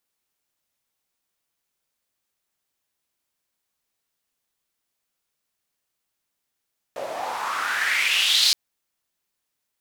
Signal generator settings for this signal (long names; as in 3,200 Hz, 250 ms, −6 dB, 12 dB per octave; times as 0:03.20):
filter sweep on noise white, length 1.57 s bandpass, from 530 Hz, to 4,500 Hz, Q 4.3, exponential, gain ramp +6 dB